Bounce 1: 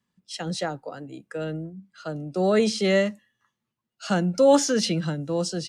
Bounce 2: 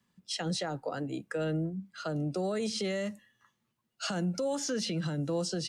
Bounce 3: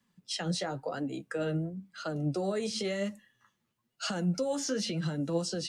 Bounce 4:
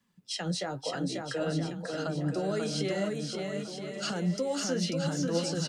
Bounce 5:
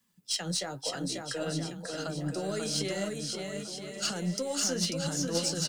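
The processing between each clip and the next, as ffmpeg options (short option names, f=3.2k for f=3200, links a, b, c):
-filter_complex "[0:a]acrossover=split=98|7200[a][b][c];[a]acompressor=threshold=-55dB:ratio=4[d];[b]acompressor=threshold=-31dB:ratio=4[e];[c]acompressor=threshold=-49dB:ratio=4[f];[d][e][f]amix=inputs=3:normalize=0,alimiter=level_in=4dB:limit=-24dB:level=0:latency=1:release=103,volume=-4dB,volume=3.5dB"
-af "flanger=delay=3.3:depth=8.9:regen=45:speed=0.96:shape=triangular,volume=4dB"
-af "aecho=1:1:540|972|1318|1594|1815:0.631|0.398|0.251|0.158|0.1"
-af "crystalizer=i=2.5:c=0,aeval=exprs='0.178*(cos(1*acos(clip(val(0)/0.178,-1,1)))-cos(1*PI/2))+0.02*(cos(3*acos(clip(val(0)/0.178,-1,1)))-cos(3*PI/2))+0.00126*(cos(8*acos(clip(val(0)/0.178,-1,1)))-cos(8*PI/2))':c=same"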